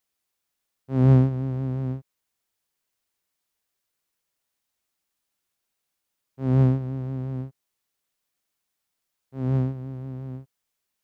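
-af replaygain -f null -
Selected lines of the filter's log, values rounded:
track_gain = +9.2 dB
track_peak = 0.314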